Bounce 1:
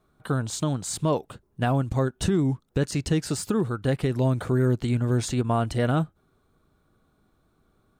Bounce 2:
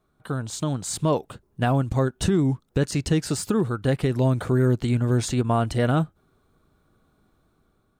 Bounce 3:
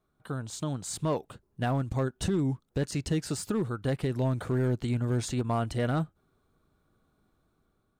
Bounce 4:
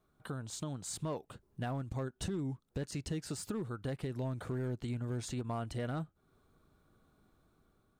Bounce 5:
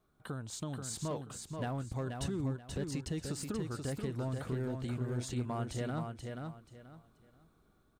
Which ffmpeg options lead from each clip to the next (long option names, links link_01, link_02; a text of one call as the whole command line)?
ffmpeg -i in.wav -af "dynaudnorm=framelen=190:gausssize=7:maxgain=5dB,volume=-3dB" out.wav
ffmpeg -i in.wav -af "volume=15dB,asoftclip=hard,volume=-15dB,volume=-6.5dB" out.wav
ffmpeg -i in.wav -af "acompressor=threshold=-45dB:ratio=2,volume=1.5dB" out.wav
ffmpeg -i in.wav -af "aecho=1:1:482|964|1446:0.562|0.141|0.0351" out.wav